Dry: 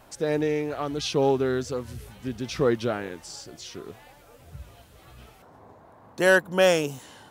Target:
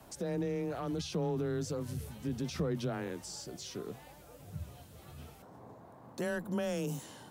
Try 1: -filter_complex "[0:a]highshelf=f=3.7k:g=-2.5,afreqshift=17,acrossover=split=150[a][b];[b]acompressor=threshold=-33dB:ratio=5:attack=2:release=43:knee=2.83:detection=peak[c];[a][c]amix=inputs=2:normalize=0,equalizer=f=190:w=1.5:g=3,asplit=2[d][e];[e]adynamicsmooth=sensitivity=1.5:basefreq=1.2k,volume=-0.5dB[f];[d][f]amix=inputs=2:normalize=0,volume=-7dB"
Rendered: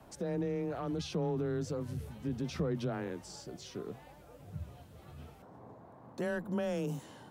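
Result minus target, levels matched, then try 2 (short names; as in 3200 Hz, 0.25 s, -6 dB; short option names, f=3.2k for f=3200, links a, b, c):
8000 Hz band -5.5 dB
-filter_complex "[0:a]highshelf=f=3.7k:g=7.5,afreqshift=17,acrossover=split=150[a][b];[b]acompressor=threshold=-33dB:ratio=5:attack=2:release=43:knee=2.83:detection=peak[c];[a][c]amix=inputs=2:normalize=0,equalizer=f=190:w=1.5:g=3,asplit=2[d][e];[e]adynamicsmooth=sensitivity=1.5:basefreq=1.2k,volume=-0.5dB[f];[d][f]amix=inputs=2:normalize=0,volume=-7dB"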